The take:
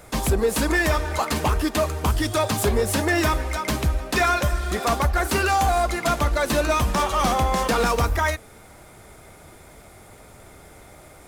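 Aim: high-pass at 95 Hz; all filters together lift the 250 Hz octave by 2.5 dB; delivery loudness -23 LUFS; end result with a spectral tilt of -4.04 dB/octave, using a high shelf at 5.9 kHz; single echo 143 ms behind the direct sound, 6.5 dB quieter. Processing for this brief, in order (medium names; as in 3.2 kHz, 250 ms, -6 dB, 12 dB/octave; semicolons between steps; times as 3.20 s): high-pass 95 Hz; peaking EQ 250 Hz +3.5 dB; treble shelf 5.9 kHz +6 dB; delay 143 ms -6.5 dB; trim -2.5 dB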